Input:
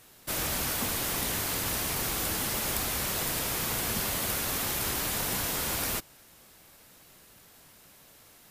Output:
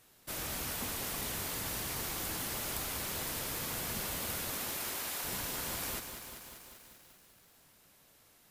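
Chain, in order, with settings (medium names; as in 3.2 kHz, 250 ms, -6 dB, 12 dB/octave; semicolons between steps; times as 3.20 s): 4.50–5.23 s: high-pass 170 Hz -> 560 Hz 12 dB/octave; bit-crushed delay 195 ms, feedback 80%, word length 8-bit, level -8.5 dB; trim -8 dB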